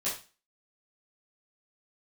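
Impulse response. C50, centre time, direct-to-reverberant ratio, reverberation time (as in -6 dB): 6.0 dB, 31 ms, -10.5 dB, 0.30 s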